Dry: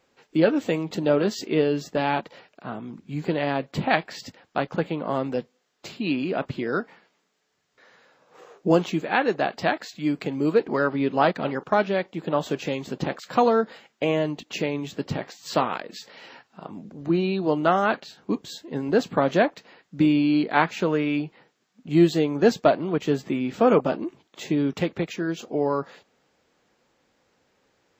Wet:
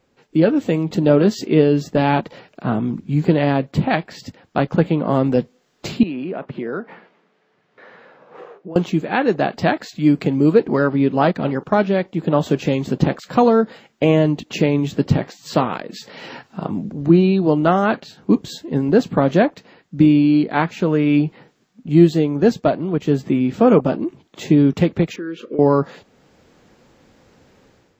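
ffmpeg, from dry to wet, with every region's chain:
-filter_complex "[0:a]asettb=1/sr,asplit=3[s0][s1][s2];[s0]atrim=end=6.034[s3];[s1]atrim=start=6.03:end=8.76,asetpts=PTS-STARTPTS,afade=t=in:d=0.004:c=qsin,afade=t=out:st=2.726:d=0.004:c=qsin,equalizer=f=280:t=o:w=0.36:g=-5,acompressor=threshold=0.00794:ratio=2.5:attack=3.2:release=140:knee=1:detection=peak,highpass=210,lowpass=2500[s4];[s2]atrim=start=8.756[s5];[s3][s4]acrossfade=d=0.004:c1=hsin:c2=qsin[s6];[s6][s5]acrossfade=d=0.004:c1=qsin:c2=hsin,asettb=1/sr,asplit=3[s7][s8][s9];[s7]atrim=end=25.164[s10];[s8]atrim=start=25.16:end=25.59,asetpts=PTS-STARTPTS,afade=t=in:d=0.004:c=qsin,afade=t=out:st=0.426:d=0.004:c=qsin,asuperstop=centerf=790:order=8:qfactor=1.5,acompressor=threshold=0.0355:ratio=6:attack=3.2:release=140:knee=1:detection=peak,acrossover=split=290 3200:gain=0.112 1 0.126[s11][s12][s13];[s11][s12][s13]amix=inputs=3:normalize=0[s14];[s9]atrim=start=25.586[s15];[s10][s14]acrossfade=d=0.004:c1=hsin:c2=qsin[s16];[s16][s15]acrossfade=d=0.004:c1=qsin:c2=hsin,lowshelf=f=330:g=11.5,dynaudnorm=f=150:g=5:m=3.76,volume=0.891"

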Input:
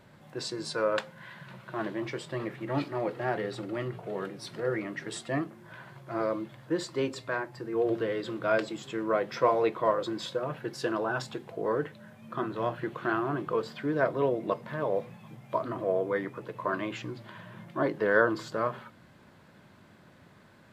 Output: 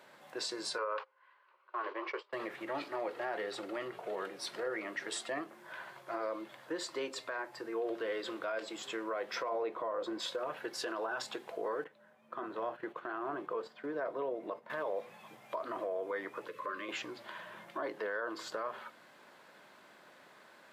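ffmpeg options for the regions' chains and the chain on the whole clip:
-filter_complex "[0:a]asettb=1/sr,asplit=3[s0][s1][s2];[s0]atrim=end=0.784[s3];[s1]atrim=start=0.78:end=2.33,asetpts=PTS-STARTPTS,afade=t=in:d=0.004:c=qsin,afade=t=out:st=1.546:d=0.004:c=qsin,agate=range=0.1:threshold=0.01:ratio=16:release=100:detection=peak,highpass=f=400:w=0.5412,highpass=f=400:w=1.3066,equalizer=f=420:t=q:w=4:g=5,equalizer=f=680:t=q:w=4:g=-7,equalizer=f=1100:t=q:w=4:g=9,equalizer=f=1800:t=q:w=4:g=-4,equalizer=f=3600:t=q:w=4:g=-9,lowpass=f=4200:w=0.5412,lowpass=f=4200:w=1.3066[s4];[s2]atrim=start=2.326[s5];[s3][s4]acrossfade=d=0.004:c1=hsin:c2=qsin[s6];[s6][s5]acrossfade=d=0.004:c1=qsin:c2=hsin,asettb=1/sr,asplit=3[s7][s8][s9];[s7]atrim=end=9.494[s10];[s8]atrim=start=9.49:end=10.2,asetpts=PTS-STARTPTS,afade=t=in:d=0.004:c=qsin,afade=t=out:st=0.706:d=0.004:c=qsin,highpass=62,tiltshelf=f=1400:g=6,bandreject=f=390:w=12[s11];[s9]atrim=start=10.196[s12];[s10][s11]acrossfade=d=0.004:c1=hsin:c2=qsin[s13];[s13][s12]acrossfade=d=0.004:c1=qsin:c2=hsin,asettb=1/sr,asplit=3[s14][s15][s16];[s14]atrim=end=11.844[s17];[s15]atrim=start=11.84:end=14.7,asetpts=PTS-STARTPTS,afade=t=in:d=0.004:c=qsin,afade=t=out:st=2.856:d=0.004:c=qsin,highshelf=f=2000:g=-10,agate=range=0.398:threshold=0.00708:ratio=16:release=100:detection=peak[s18];[s16]atrim=start=14.696[s19];[s17][s18]acrossfade=d=0.004:c1=hsin:c2=qsin[s20];[s20][s19]acrossfade=d=0.004:c1=qsin:c2=hsin,asettb=1/sr,asplit=3[s21][s22][s23];[s21]atrim=end=16.484[s24];[s22]atrim=start=16.48:end=16.89,asetpts=PTS-STARTPTS,afade=t=in:d=0.004:c=qsin,afade=t=out:st=0.406:d=0.004:c=qsin,acompressor=threshold=0.0112:ratio=2:attack=3.2:release=140:knee=1:detection=peak,asuperstop=centerf=780:order=20:qfactor=2[s25];[s23]atrim=start=16.886[s26];[s24][s25]acrossfade=d=0.004:c1=hsin:c2=qsin[s27];[s27][s26]acrossfade=d=0.004:c1=qsin:c2=hsin,acompressor=threshold=0.02:ratio=2,highpass=480,alimiter=level_in=2:limit=0.0631:level=0:latency=1:release=36,volume=0.501,volume=1.26"

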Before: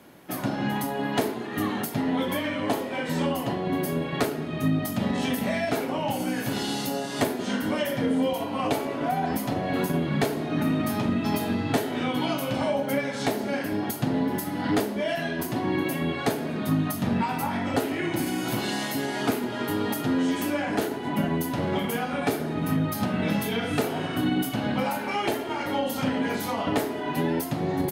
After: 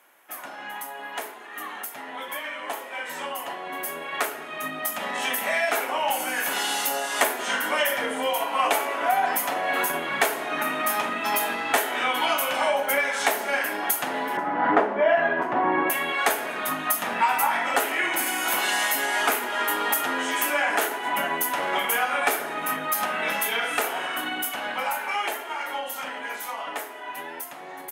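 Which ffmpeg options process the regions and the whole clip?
-filter_complex "[0:a]asettb=1/sr,asplit=3[s0][s1][s2];[s0]atrim=end=14.374[s3];[s1]atrim=start=14.37:end=15.9,asetpts=PTS-STARTPTS,afade=t=in:d=0.004:c=qsin,afade=t=out:st=1.526:d=0.004:c=qsin,lowshelf=f=110:g=12,acontrast=51,lowpass=1200[s4];[s2]atrim=start=15.896[s5];[s3][s4]acrossfade=d=0.004:c1=hsin:c2=qsin[s6];[s6][s5]acrossfade=d=0.004:c1=qsin:c2=hsin,highpass=990,equalizer=f=4400:w=1.6:g=-10.5,dynaudnorm=f=690:g=13:m=3.76"

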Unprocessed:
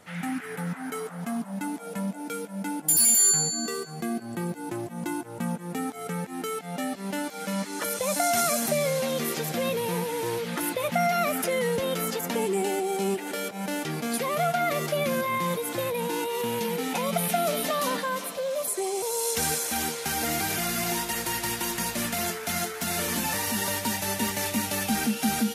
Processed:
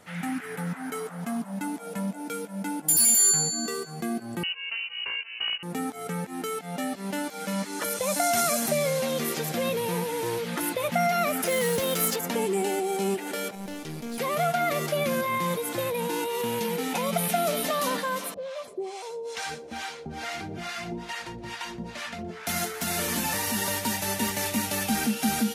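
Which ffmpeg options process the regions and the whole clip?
-filter_complex "[0:a]asettb=1/sr,asplit=3[s0][s1][s2];[s0]atrim=end=4.434[s3];[s1]atrim=start=4.43:end=5.63,asetpts=PTS-STARTPTS,afade=t=in:d=0.004:c=qsin,afade=t=out:st=1.196:d=0.004:c=qsin,aeval=exprs='(mod(11.2*val(0)+1,2)-1)/11.2':c=same,lowpass=f=2600:t=q:w=0.5098,lowpass=f=2600:t=q:w=0.6013,lowpass=f=2600:t=q:w=0.9,lowpass=f=2600:t=q:w=2.563,afreqshift=-3100[s4];[s2]atrim=start=5.626[s5];[s3][s4]acrossfade=d=0.004:c1=hsin:c2=qsin[s6];[s6][s5]acrossfade=d=0.004:c1=qsin:c2=hsin,asettb=1/sr,asplit=3[s7][s8][s9];[s7]atrim=end=11.464[s10];[s8]atrim=start=11.46:end=12.16,asetpts=PTS-STARTPTS,afade=t=in:d=0.004:c=qsin,afade=t=out:st=0.696:d=0.004:c=qsin,highshelf=f=4300:g=8,acrusher=bits=3:mode=log:mix=0:aa=0.000001[s11];[s9]atrim=start=12.156[s12];[s10][s11]acrossfade=d=0.004:c1=hsin:c2=qsin[s13];[s13][s12]acrossfade=d=0.004:c1=qsin:c2=hsin,asettb=1/sr,asplit=3[s14][s15][s16];[s14]atrim=end=13.554[s17];[s15]atrim=start=13.55:end=14.18,asetpts=PTS-STARTPTS,afade=t=in:d=0.004:c=qsin,afade=t=out:st=0.626:d=0.004:c=qsin,equalizer=f=1300:w=0.54:g=-7.5,acrossover=split=6200[s18][s19];[s19]acompressor=threshold=0.00708:ratio=4:attack=1:release=60[s20];[s18][s20]amix=inputs=2:normalize=0,aeval=exprs='(tanh(25.1*val(0)+0.65)-tanh(0.65))/25.1':c=same[s21];[s16]atrim=start=14.176[s22];[s17][s21]acrossfade=d=0.004:c1=hsin:c2=qsin[s23];[s23][s22]acrossfade=d=0.004:c1=qsin:c2=hsin,asettb=1/sr,asplit=3[s24][s25][s26];[s24]atrim=end=18.344[s27];[s25]atrim=start=18.34:end=22.47,asetpts=PTS-STARTPTS,afade=t=in:d=0.004:c=qsin,afade=t=out:st=4.126:d=0.004:c=qsin,lowpass=4200,acrossover=split=610[s28][s29];[s28]aeval=exprs='val(0)*(1-1/2+1/2*cos(2*PI*2.3*n/s))':c=same[s30];[s29]aeval=exprs='val(0)*(1-1/2-1/2*cos(2*PI*2.3*n/s))':c=same[s31];[s30][s31]amix=inputs=2:normalize=0,aecho=1:1:121:0.0631,atrim=end_sample=182133[s32];[s26]atrim=start=22.466[s33];[s27][s32]acrossfade=d=0.004:c1=hsin:c2=qsin[s34];[s34][s33]acrossfade=d=0.004:c1=qsin:c2=hsin"

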